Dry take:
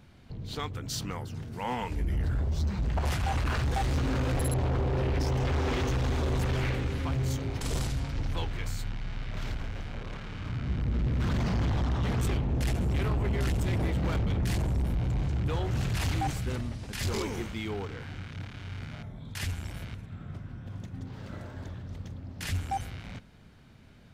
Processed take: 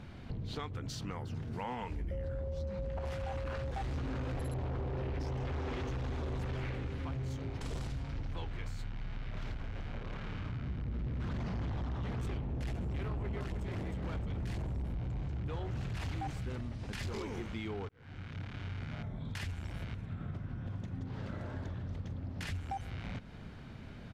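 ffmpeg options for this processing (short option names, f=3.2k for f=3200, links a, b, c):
-filter_complex "[0:a]asettb=1/sr,asplit=3[a][b][c];[a]atrim=end=2.114[d];[b]atrim=start=2.11:end=3.71,asetpts=PTS-STARTPTS,afade=t=in:d=0.004:c=qsin,afade=t=out:st=1.596:d=0.004:c=qsin,aeval=exprs='val(0)+0.0316*sin(2*PI*540*n/s)':c=same[e];[c]atrim=start=3.706[f];[d][e]acrossfade=d=0.004:c1=hsin:c2=qsin[g];[g][f]acrossfade=d=0.004:c1=qsin:c2=hsin,asplit=2[h][i];[i]afade=t=in:st=13.05:d=0.01,afade=t=out:st=13.64:d=0.01,aecho=0:1:310|620|930|1240|1550|1860:0.668344|0.300755|0.13534|0.0609028|0.0274063|0.0123328[j];[h][j]amix=inputs=2:normalize=0,asplit=2[k][l];[k]atrim=end=17.89,asetpts=PTS-STARTPTS,afade=t=out:st=17.886:d=0.004:c=hsin[m];[l]atrim=start=17.89,asetpts=PTS-STARTPTS,afade=t=in:d=1.95:c=qsin[n];[m][n]concat=n=2:v=0:a=1,acompressor=threshold=-44dB:ratio=6,aemphasis=mode=reproduction:type=50kf,volume=7dB"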